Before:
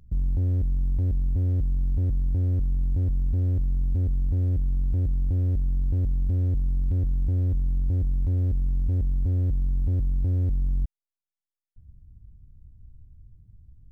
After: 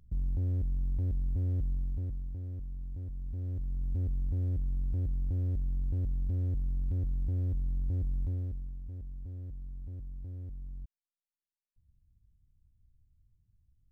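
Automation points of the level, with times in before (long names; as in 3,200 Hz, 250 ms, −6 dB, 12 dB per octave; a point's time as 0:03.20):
0:01.71 −7 dB
0:02.39 −15.5 dB
0:03.10 −15.5 dB
0:03.98 −7.5 dB
0:08.22 −7.5 dB
0:08.80 −18 dB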